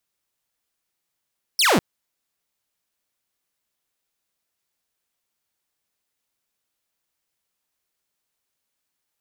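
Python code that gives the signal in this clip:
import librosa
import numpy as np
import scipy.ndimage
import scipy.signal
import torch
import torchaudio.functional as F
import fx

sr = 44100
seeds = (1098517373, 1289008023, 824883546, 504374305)

y = fx.laser_zap(sr, level_db=-12.0, start_hz=5700.0, end_hz=150.0, length_s=0.2, wave='saw')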